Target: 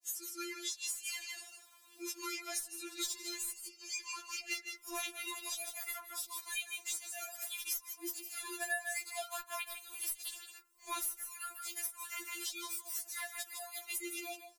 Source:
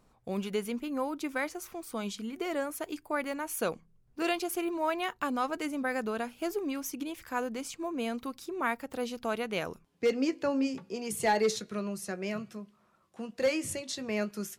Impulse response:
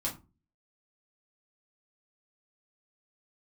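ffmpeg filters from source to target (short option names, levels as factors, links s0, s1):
-filter_complex "[0:a]areverse,aderivative,aecho=1:1:156:0.355,dynaudnorm=f=190:g=13:m=3.98,asplit=2[s0][s1];[s1]lowpass=f=2500:w=0.5412,lowpass=f=2500:w=1.3066[s2];[1:a]atrim=start_sample=2205[s3];[s2][s3]afir=irnorm=-1:irlink=0,volume=0.251[s4];[s0][s4]amix=inputs=2:normalize=0,aeval=exprs='0.316*(cos(1*acos(clip(val(0)/0.316,-1,1)))-cos(1*PI/2))+0.02*(cos(4*acos(clip(val(0)/0.316,-1,1)))-cos(4*PI/2))+0.0251*(cos(7*acos(clip(val(0)/0.316,-1,1)))-cos(7*PI/2))':c=same,afreqshift=-71,equalizer=f=91:t=o:w=2.9:g=-8.5,acompressor=threshold=0.00251:ratio=12,afftfilt=real='re*4*eq(mod(b,16),0)':imag='im*4*eq(mod(b,16),0)':win_size=2048:overlap=0.75,volume=7.5"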